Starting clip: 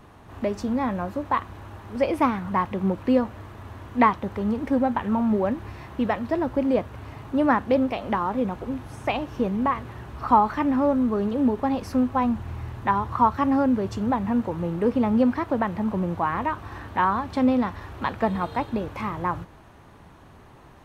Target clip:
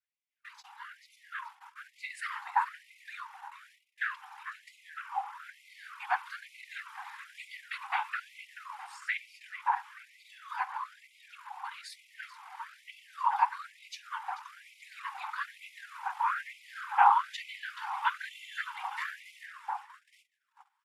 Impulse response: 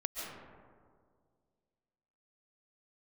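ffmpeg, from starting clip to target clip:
-filter_complex "[0:a]asplit=2[link_01][link_02];[link_02]adelay=433,lowpass=frequency=4800:poles=1,volume=-10dB,asplit=2[link_03][link_04];[link_04]adelay=433,lowpass=frequency=4800:poles=1,volume=0.46,asplit=2[link_05][link_06];[link_06]adelay=433,lowpass=frequency=4800:poles=1,volume=0.46,asplit=2[link_07][link_08];[link_08]adelay=433,lowpass=frequency=4800:poles=1,volume=0.46,asplit=2[link_09][link_10];[link_10]adelay=433,lowpass=frequency=4800:poles=1,volume=0.46[link_11];[link_01][link_03][link_05][link_07][link_09][link_11]amix=inputs=6:normalize=0,dynaudnorm=framelen=160:gausssize=21:maxgain=15.5dB,afftfilt=real='hypot(re,im)*cos(2*PI*random(0))':imag='hypot(re,im)*sin(2*PI*random(1))':win_size=512:overlap=0.75,asetrate=37084,aresample=44100,atempo=1.18921,agate=range=-28dB:threshold=-37dB:ratio=16:detection=peak,afftfilt=real='re*gte(b*sr/1024,730*pow(2000/730,0.5+0.5*sin(2*PI*1.1*pts/sr)))':imag='im*gte(b*sr/1024,730*pow(2000/730,0.5+0.5*sin(2*PI*1.1*pts/sr)))':win_size=1024:overlap=0.75"

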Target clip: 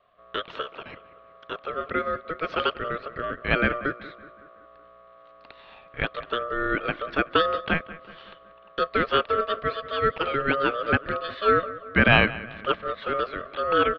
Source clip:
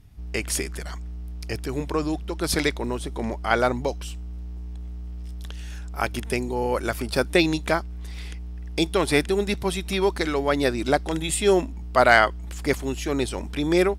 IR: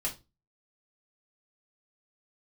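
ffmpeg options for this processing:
-filter_complex "[0:a]asplit=2[link_01][link_02];[link_02]adelay=187,lowpass=frequency=1600:poles=1,volume=-16dB,asplit=2[link_03][link_04];[link_04]adelay=187,lowpass=frequency=1600:poles=1,volume=0.54,asplit=2[link_05][link_06];[link_06]adelay=187,lowpass=frequency=1600:poles=1,volume=0.54,asplit=2[link_07][link_08];[link_08]adelay=187,lowpass=frequency=1600:poles=1,volume=0.54,asplit=2[link_09][link_10];[link_10]adelay=187,lowpass=frequency=1600:poles=1,volume=0.54[link_11];[link_01][link_03][link_05][link_07][link_09][link_11]amix=inputs=6:normalize=0,highpass=frequency=170:width_type=q:width=0.5412,highpass=frequency=170:width_type=q:width=1.307,lowpass=frequency=2800:width_type=q:width=0.5176,lowpass=frequency=2800:width_type=q:width=0.7071,lowpass=frequency=2800:width_type=q:width=1.932,afreqshift=51,aeval=exprs='val(0)*sin(2*PI*890*n/s)':channel_layout=same,volume=1.5dB"

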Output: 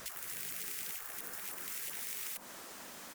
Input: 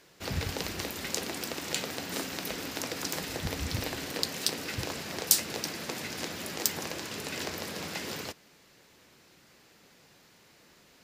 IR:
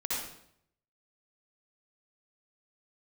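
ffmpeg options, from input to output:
-filter_complex "[0:a]acrossover=split=390|3000[link_01][link_02][link_03];[link_02]acompressor=threshold=-59dB:ratio=2[link_04];[link_01][link_04][link_03]amix=inputs=3:normalize=0,asetrate=154791,aresample=44100,lowshelf=frequency=350:gain=5.5,bandreject=frequency=47.7:width_type=h:width=4,bandreject=frequency=95.4:width_type=h:width=4,bandreject=frequency=143.1:width_type=h:width=4,acompressor=threshold=-43dB:ratio=8,asplit=2[link_05][link_06];[link_06]adelay=1633,volume=-18dB,highshelf=frequency=4000:gain=-36.7[link_07];[link_05][link_07]amix=inputs=2:normalize=0,aeval=exprs='val(0)+0.000562*(sin(2*PI*50*n/s)+sin(2*PI*2*50*n/s)/2+sin(2*PI*3*50*n/s)/3+sin(2*PI*4*50*n/s)/4+sin(2*PI*5*50*n/s)/5)':channel_layout=same,asubboost=boost=6:cutoff=190,afftfilt=real='re*lt(hypot(re,im),0.00447)':imag='im*lt(hypot(re,im),0.00447)':win_size=1024:overlap=0.75,volume=11dB"

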